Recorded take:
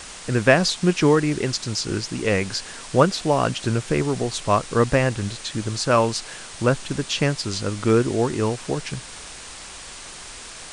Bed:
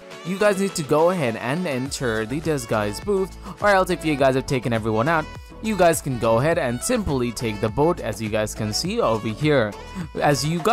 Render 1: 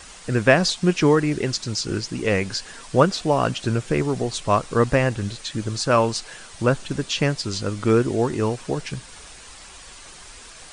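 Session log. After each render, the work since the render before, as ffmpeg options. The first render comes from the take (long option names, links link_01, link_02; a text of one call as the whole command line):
ffmpeg -i in.wav -af "afftdn=noise_reduction=7:noise_floor=-39" out.wav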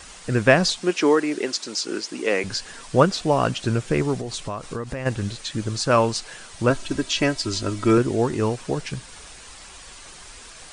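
ffmpeg -i in.wav -filter_complex "[0:a]asettb=1/sr,asplit=3[link_01][link_02][link_03];[link_01]atrim=end=0.824[link_04];[link_02]atrim=start=0.82:end=2.44,asetpts=PTS-STARTPTS,afade=type=in:duration=0.004:curve=qsin,afade=type=out:start_time=1.616:duration=0.004:curve=qsin,highpass=frequency=260:width=0.5412,highpass=frequency=260:width=1.3066[link_05];[link_03]atrim=start=2.436[link_06];[link_04][link_05]acrossfade=duration=0.004:curve1=hsin:curve2=qsin[link_07];[link_07][link_06]acrossfade=duration=0.004:curve1=qsin:curve2=hsin,asplit=3[link_08][link_09][link_10];[link_08]afade=type=out:start_time=4.16:duration=0.02[link_11];[link_09]acompressor=threshold=-25dB:ratio=8:attack=3.2:release=140:knee=1:detection=peak,afade=type=in:start_time=4.16:duration=0.02,afade=type=out:start_time=5.05:duration=0.02[link_12];[link_10]afade=type=in:start_time=5.05:duration=0.02[link_13];[link_11][link_12][link_13]amix=inputs=3:normalize=0,asettb=1/sr,asplit=3[link_14][link_15][link_16];[link_14]atrim=end=6.704[link_17];[link_15]atrim=start=6.7:end=7.98,asetpts=PTS-STARTPTS,afade=type=in:duration=0.004:curve=qsin,afade=type=out:start_time=1.276:duration=0.004:curve=qsin,aecho=1:1:3.1:0.65,atrim=end_sample=56448[link_18];[link_16]atrim=start=7.976[link_19];[link_17][link_18]acrossfade=duration=0.004:curve1=hsin:curve2=qsin[link_20];[link_20][link_19]acrossfade=duration=0.004:curve1=qsin:curve2=hsin" out.wav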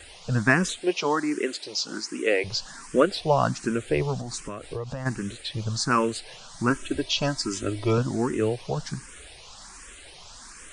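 ffmpeg -i in.wav -filter_complex "[0:a]asplit=2[link_01][link_02];[link_02]afreqshift=1.3[link_03];[link_01][link_03]amix=inputs=2:normalize=1" out.wav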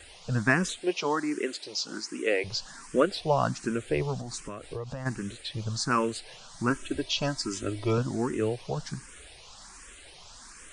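ffmpeg -i in.wav -af "volume=-3.5dB" out.wav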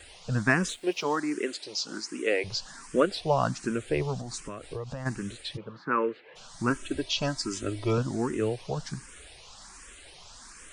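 ffmpeg -i in.wav -filter_complex "[0:a]asettb=1/sr,asplit=3[link_01][link_02][link_03];[link_01]atrim=end=0.694[link_04];[link_02]atrim=start=0.69:end=1.17,asetpts=PTS-STARTPTS,afade=type=in:duration=0.004:curve=qsin,afade=type=out:start_time=0.476:duration=0.004:curve=qsin,aeval=exprs='sgn(val(0))*max(abs(val(0))-0.00188,0)':channel_layout=same[link_05];[link_03]atrim=start=1.166[link_06];[link_04][link_05]acrossfade=duration=0.004:curve1=hsin:curve2=qsin[link_07];[link_07][link_06]acrossfade=duration=0.004:curve1=qsin:curve2=hsin,asplit=3[link_08][link_09][link_10];[link_08]afade=type=out:start_time=5.56:duration=0.02[link_11];[link_09]highpass=frequency=180:width=0.5412,highpass=frequency=180:width=1.3066,equalizer=frequency=220:width_type=q:width=4:gain=-6,equalizer=frequency=480:width_type=q:width=4:gain=5,equalizer=frequency=700:width_type=q:width=4:gain=-10,lowpass=frequency=2300:width=0.5412,lowpass=frequency=2300:width=1.3066,afade=type=in:start_time=5.56:duration=0.02,afade=type=out:start_time=6.35:duration=0.02[link_12];[link_10]afade=type=in:start_time=6.35:duration=0.02[link_13];[link_11][link_12][link_13]amix=inputs=3:normalize=0" out.wav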